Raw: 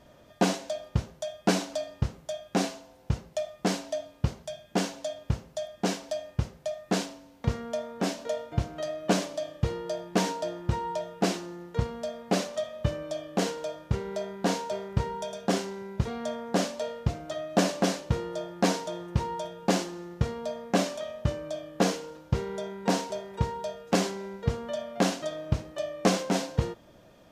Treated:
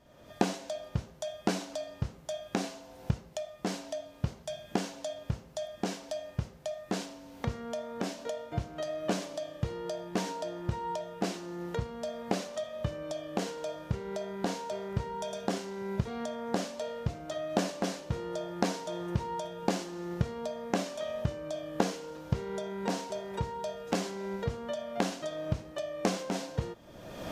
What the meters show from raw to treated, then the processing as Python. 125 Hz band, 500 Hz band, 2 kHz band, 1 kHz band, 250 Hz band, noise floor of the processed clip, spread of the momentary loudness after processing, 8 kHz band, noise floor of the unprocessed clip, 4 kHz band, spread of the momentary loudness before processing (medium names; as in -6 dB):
-5.0 dB, -4.0 dB, -5.5 dB, -4.5 dB, -5.0 dB, -53 dBFS, 6 LU, -6.0 dB, -56 dBFS, -6.0 dB, 8 LU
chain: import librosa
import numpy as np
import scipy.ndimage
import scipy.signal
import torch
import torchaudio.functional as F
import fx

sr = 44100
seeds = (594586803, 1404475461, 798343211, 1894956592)

y = fx.recorder_agc(x, sr, target_db=-19.5, rise_db_per_s=38.0, max_gain_db=30)
y = y * librosa.db_to_amplitude(-7.5)